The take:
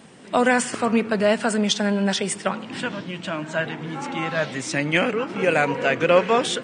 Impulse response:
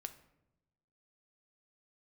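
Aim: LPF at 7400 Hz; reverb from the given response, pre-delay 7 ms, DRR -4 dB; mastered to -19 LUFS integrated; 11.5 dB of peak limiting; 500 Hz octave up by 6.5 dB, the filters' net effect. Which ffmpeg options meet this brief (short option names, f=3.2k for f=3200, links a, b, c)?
-filter_complex "[0:a]lowpass=7.4k,equalizer=f=500:t=o:g=7.5,alimiter=limit=-10.5dB:level=0:latency=1,asplit=2[a][b];[1:a]atrim=start_sample=2205,adelay=7[c];[b][c]afir=irnorm=-1:irlink=0,volume=7.5dB[d];[a][d]amix=inputs=2:normalize=0,volume=-2dB"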